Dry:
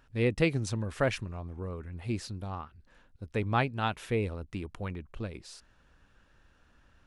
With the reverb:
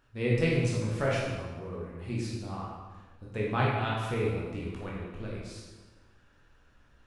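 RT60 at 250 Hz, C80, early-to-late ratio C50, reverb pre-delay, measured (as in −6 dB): 1.5 s, 2.5 dB, 0.0 dB, 13 ms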